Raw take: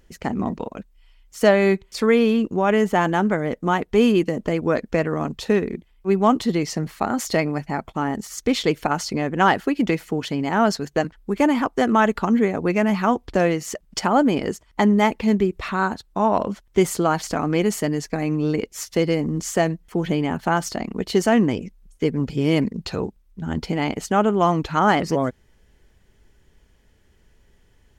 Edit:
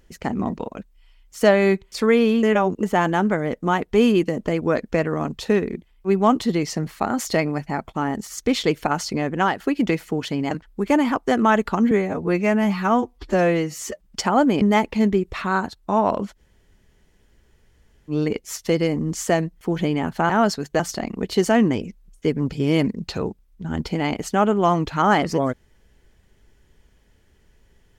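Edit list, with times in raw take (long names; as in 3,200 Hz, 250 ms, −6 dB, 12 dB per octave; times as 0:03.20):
0:02.43–0:02.83: reverse
0:09.32–0:09.60: fade out, to −10 dB
0:10.51–0:11.01: move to 0:20.57
0:12.41–0:13.84: time-stretch 1.5×
0:14.40–0:14.89: remove
0:16.65–0:18.38: fill with room tone, crossfade 0.06 s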